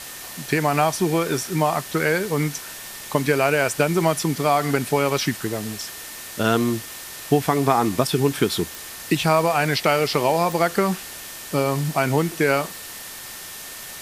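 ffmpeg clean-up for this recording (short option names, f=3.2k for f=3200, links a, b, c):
-af "adeclick=t=4,bandreject=f=1.8k:w=30,afwtdn=0.018"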